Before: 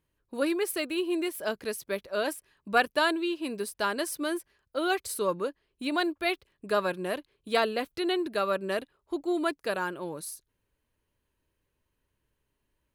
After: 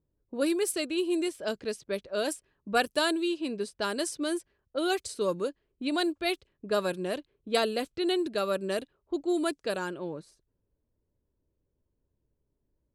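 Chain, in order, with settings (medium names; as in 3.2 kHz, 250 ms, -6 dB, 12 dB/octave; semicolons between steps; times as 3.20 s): level-controlled noise filter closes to 780 Hz, open at -24.5 dBFS; ten-band graphic EQ 1 kHz -6 dB, 2 kHz -5 dB, 8 kHz +9 dB, 16 kHz -3 dB; trim +1.5 dB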